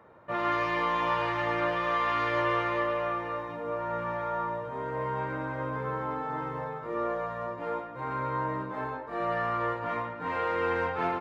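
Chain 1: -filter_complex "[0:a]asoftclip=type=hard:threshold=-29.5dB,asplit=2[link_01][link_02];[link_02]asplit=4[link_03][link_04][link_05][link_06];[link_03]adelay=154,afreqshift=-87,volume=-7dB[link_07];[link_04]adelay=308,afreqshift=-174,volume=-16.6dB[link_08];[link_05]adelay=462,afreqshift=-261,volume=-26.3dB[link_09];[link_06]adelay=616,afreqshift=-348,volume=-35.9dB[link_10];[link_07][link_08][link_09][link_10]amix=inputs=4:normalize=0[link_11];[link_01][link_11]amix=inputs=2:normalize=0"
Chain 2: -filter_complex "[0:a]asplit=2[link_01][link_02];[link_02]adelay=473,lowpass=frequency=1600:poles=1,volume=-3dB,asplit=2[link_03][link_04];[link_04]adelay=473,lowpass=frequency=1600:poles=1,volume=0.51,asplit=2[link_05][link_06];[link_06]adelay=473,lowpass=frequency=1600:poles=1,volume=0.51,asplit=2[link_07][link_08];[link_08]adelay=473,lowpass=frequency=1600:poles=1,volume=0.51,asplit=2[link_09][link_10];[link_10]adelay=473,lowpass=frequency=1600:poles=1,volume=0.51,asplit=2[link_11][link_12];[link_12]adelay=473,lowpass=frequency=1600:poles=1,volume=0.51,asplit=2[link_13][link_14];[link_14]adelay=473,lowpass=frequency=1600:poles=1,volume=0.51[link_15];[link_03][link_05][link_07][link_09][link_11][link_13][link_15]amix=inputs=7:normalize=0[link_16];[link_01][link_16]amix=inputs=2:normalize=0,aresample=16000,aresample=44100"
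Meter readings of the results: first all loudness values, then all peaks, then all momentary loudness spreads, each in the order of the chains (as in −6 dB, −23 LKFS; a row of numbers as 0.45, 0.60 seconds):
−32.5, −29.0 LKFS; −23.0, −15.0 dBFS; 5, 6 LU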